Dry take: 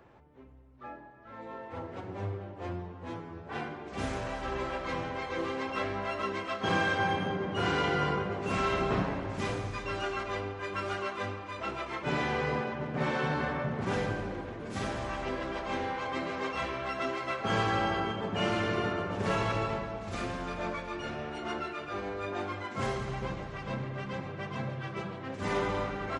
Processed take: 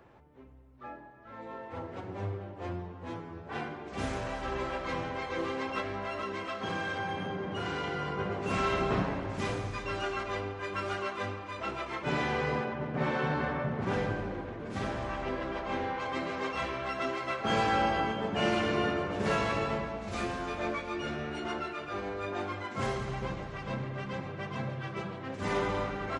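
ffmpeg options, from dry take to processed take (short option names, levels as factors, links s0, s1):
-filter_complex "[0:a]asettb=1/sr,asplit=3[s0][s1][s2];[s0]atrim=end=5.804[s3];[s1]atrim=start=5.8:end=8.19,asetpts=PTS-STARTPTS,afade=t=in:d=0.004:c=qsin,afade=t=out:st=2.386:d=0.004:c=qsin,acompressor=threshold=0.0251:ratio=3:attack=3.2:release=140:knee=1:detection=peak[s4];[s2]atrim=start=8.186[s5];[s3][s4]acrossfade=d=0.004:c1=hsin:c2=qsin[s6];[s6][s5]acrossfade=d=0.004:c1=qsin:c2=hsin,asettb=1/sr,asplit=3[s7][s8][s9];[s7]atrim=end=12.654[s10];[s8]atrim=start=12.65:end=16,asetpts=PTS-STARTPTS,afade=t=in:d=0.004:c=qsin,afade=t=out:st=3.346:d=0.004:c=qsin,aemphasis=mode=reproduction:type=cd[s11];[s9]atrim=start=15.996[s12];[s10][s11]acrossfade=d=0.004:c1=hsin:c2=qsin[s13];[s13][s12]acrossfade=d=0.004:c1=qsin:c2=hsin,asettb=1/sr,asplit=3[s14][s15][s16];[s14]atrim=end=17.454[s17];[s15]atrim=start=17.45:end=21.47,asetpts=PTS-STARTPTS,afade=t=in:d=0.004:c=qsin,afade=t=out:st=4.016:d=0.004:c=qsin,asplit=2[s18][s19];[s19]adelay=14,volume=0.596[s20];[s18][s20]amix=inputs=2:normalize=0,atrim=end_sample=177282[s21];[s16]atrim=start=21.466[s22];[s17][s21]acrossfade=d=0.004:c1=hsin:c2=qsin[s23];[s23][s22]acrossfade=d=0.004:c1=qsin:c2=hsin"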